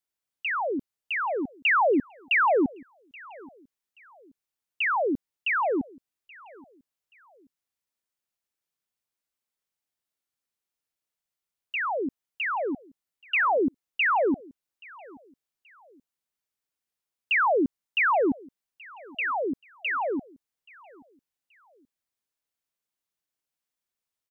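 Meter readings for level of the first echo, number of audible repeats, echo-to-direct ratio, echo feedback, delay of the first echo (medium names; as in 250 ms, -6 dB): -23.5 dB, 2, -23.0 dB, 33%, 828 ms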